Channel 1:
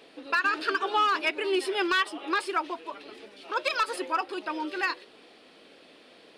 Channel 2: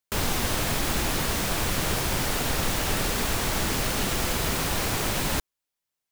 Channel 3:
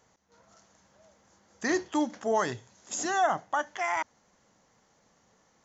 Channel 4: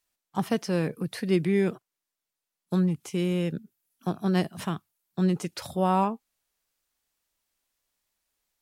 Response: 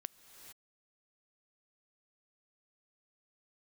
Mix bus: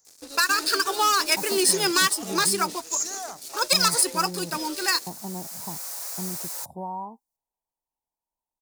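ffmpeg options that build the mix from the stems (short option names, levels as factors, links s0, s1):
-filter_complex "[0:a]aeval=exprs='sgn(val(0))*max(abs(val(0))-0.00299,0)':c=same,adelay=50,volume=1.33[s0];[1:a]highpass=f=580:w=0.5412,highpass=f=580:w=1.3066,highshelf=f=2800:g=-11.5,aecho=1:1:7.2:0.46,adelay=1250,volume=0.2[s1];[2:a]volume=0.237,asplit=2[s2][s3];[3:a]firequalizer=gain_entry='entry(570,0);entry(940,12);entry(1400,-30)':delay=0.05:min_phase=1,acompressor=threshold=0.0794:ratio=6,adelay=1000,volume=0.376[s4];[s3]apad=whole_len=325066[s5];[s1][s5]sidechaincompress=threshold=0.00126:ratio=8:attack=6.3:release=1300[s6];[s0][s6][s2][s4]amix=inputs=4:normalize=0,aexciter=amount=9.9:drive=6:freq=4600"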